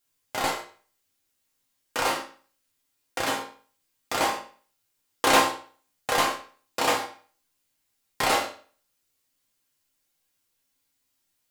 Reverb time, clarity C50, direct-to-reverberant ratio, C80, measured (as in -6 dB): 0.40 s, 8.0 dB, -2.0 dB, 12.5 dB